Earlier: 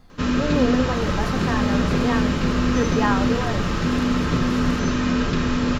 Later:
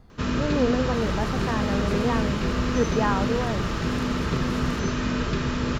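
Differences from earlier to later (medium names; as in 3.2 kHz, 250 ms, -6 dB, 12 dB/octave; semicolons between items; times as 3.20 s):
speech: add tilt shelf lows +4 dB, about 1.3 kHz; reverb: off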